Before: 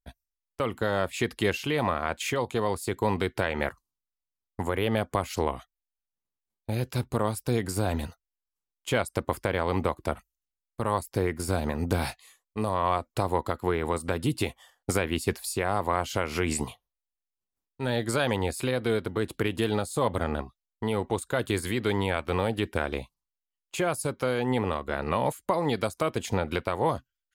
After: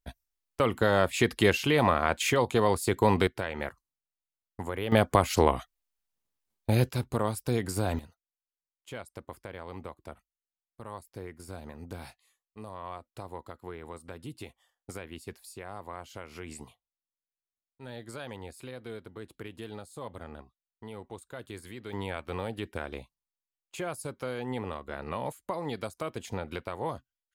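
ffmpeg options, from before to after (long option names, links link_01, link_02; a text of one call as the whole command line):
ffmpeg -i in.wav -af "asetnsamples=nb_out_samples=441:pad=0,asendcmd='3.27 volume volume -6dB;4.92 volume volume 5dB;6.89 volume volume -2dB;7.99 volume volume -15dB;21.93 volume volume -8dB',volume=3dB" out.wav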